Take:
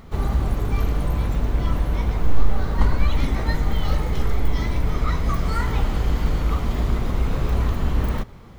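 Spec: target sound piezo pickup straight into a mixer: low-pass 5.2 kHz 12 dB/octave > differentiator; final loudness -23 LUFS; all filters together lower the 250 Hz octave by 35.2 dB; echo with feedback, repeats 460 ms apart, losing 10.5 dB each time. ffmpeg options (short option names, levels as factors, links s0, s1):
-af "lowpass=5200,aderivative,equalizer=f=250:t=o:g=-8,aecho=1:1:460|920|1380:0.299|0.0896|0.0269,volume=14.1"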